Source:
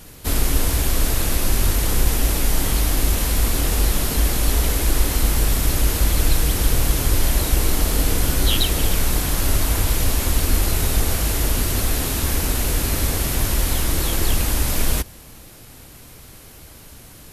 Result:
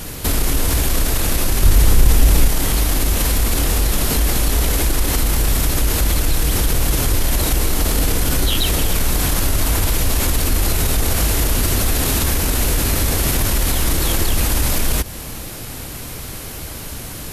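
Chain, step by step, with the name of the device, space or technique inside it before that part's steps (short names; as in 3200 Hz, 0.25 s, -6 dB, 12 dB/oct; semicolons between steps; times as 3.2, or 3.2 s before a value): loud club master (compressor 1.5:1, threshold -26 dBFS, peak gain reduction 6 dB; hard clip -11.5 dBFS, distortion -46 dB; maximiser +19.5 dB); 1.62–2.48 low shelf 150 Hz +7.5 dB; gain -7 dB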